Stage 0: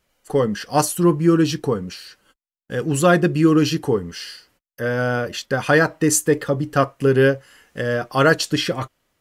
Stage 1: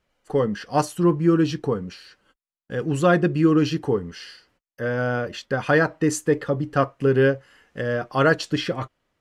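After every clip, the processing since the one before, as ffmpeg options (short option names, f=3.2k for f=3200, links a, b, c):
-af "aemphasis=mode=reproduction:type=50fm,volume=-3dB"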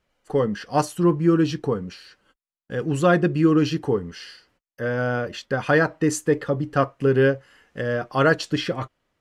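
-af anull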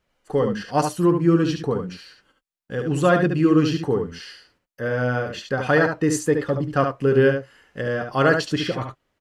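-af "aecho=1:1:72:0.501"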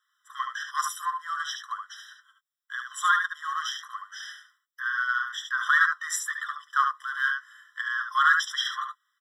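-filter_complex "[0:a]asplit=2[a][b];[b]asoftclip=type=hard:threshold=-15.5dB,volume=-6dB[c];[a][c]amix=inputs=2:normalize=0,afftfilt=real='re*eq(mod(floor(b*sr/1024/1000),2),1)':imag='im*eq(mod(floor(b*sr/1024/1000),2),1)':win_size=1024:overlap=0.75"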